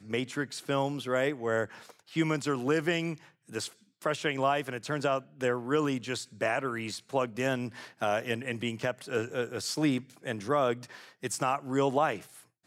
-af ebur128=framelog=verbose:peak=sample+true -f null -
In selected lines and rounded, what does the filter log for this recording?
Integrated loudness:
  I:         -31.3 LUFS
  Threshold: -41.5 LUFS
Loudness range:
  LRA:         1.4 LU
  Threshold: -51.6 LUFS
  LRA low:   -32.4 LUFS
  LRA high:  -30.9 LUFS
Sample peak:
  Peak:      -13.6 dBFS
True peak:
  Peak:      -13.6 dBFS